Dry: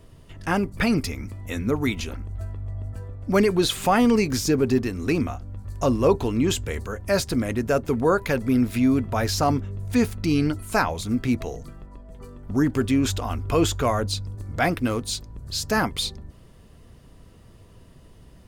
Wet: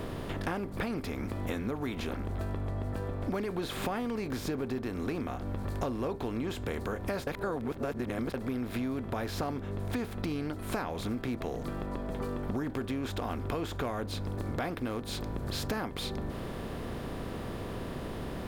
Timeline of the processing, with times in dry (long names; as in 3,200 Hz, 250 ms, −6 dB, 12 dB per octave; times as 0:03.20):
0:07.27–0:08.34: reverse
whole clip: compressor on every frequency bin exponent 0.6; parametric band 6,700 Hz −10 dB 1.4 octaves; downward compressor 10 to 1, threshold −28 dBFS; level −2.5 dB